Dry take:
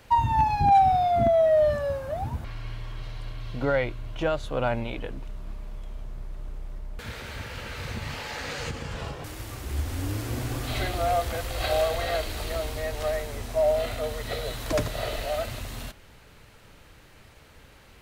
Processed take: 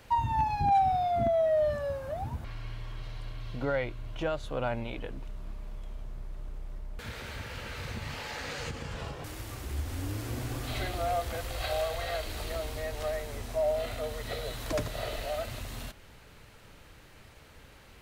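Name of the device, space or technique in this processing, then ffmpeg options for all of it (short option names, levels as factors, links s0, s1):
parallel compression: -filter_complex "[0:a]asplit=2[s0][s1];[s1]acompressor=threshold=0.0141:ratio=6,volume=0.891[s2];[s0][s2]amix=inputs=2:normalize=0,asettb=1/sr,asplit=3[s3][s4][s5];[s3]atrim=end=11.564[s6];[s4]atrim=start=11.56:end=12.24,asetpts=PTS-STARTPTS,afade=t=in:d=0.004:c=qsin,afade=t=out:st=0.676:d=0.004:c=qsin,equalizer=f=280:t=o:w=1.3:g=-6[s7];[s5]atrim=start=12.236[s8];[s6][s7]acrossfade=d=0.004:c1=hsin:c2=qsin[s9];[s9][s8]acrossfade=d=0.004:c1=qsin:c2=hsin,volume=0.447"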